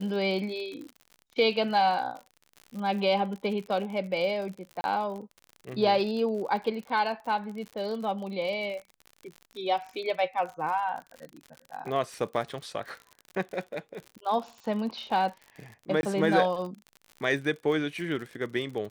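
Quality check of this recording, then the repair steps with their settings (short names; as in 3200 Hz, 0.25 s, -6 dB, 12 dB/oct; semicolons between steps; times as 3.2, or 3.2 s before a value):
crackle 60/s -36 dBFS
4.81–4.84 gap 31 ms
16.01–16.03 gap 21 ms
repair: de-click; interpolate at 4.81, 31 ms; interpolate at 16.01, 21 ms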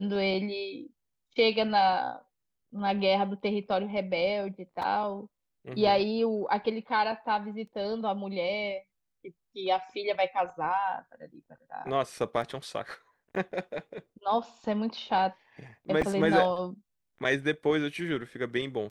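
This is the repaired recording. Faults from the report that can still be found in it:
none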